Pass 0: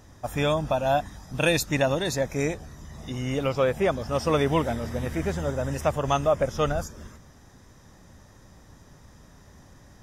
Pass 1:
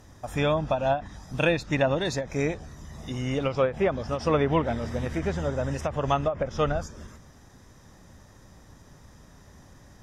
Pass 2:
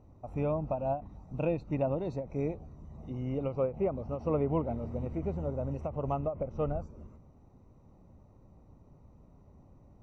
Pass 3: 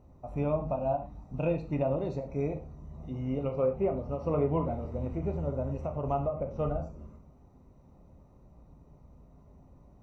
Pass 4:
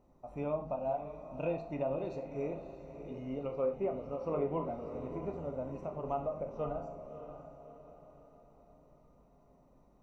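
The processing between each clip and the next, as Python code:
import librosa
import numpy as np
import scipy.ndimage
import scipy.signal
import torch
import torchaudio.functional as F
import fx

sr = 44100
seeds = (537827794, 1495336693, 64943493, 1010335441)

y1 = fx.env_lowpass_down(x, sr, base_hz=2500.0, full_db=-18.0)
y1 = fx.end_taper(y1, sr, db_per_s=200.0)
y2 = np.convolve(y1, np.full(26, 1.0 / 26))[:len(y1)]
y2 = y2 * librosa.db_to_amplitude(-5.0)
y3 = fx.rev_gated(y2, sr, seeds[0], gate_ms=150, shape='falling', drr_db=3.5)
y4 = fx.peak_eq(y3, sr, hz=78.0, db=-15.0, octaves=1.7)
y4 = fx.echo_diffused(y4, sr, ms=610, feedback_pct=44, wet_db=-10.0)
y4 = y4 * librosa.db_to_amplitude(-4.0)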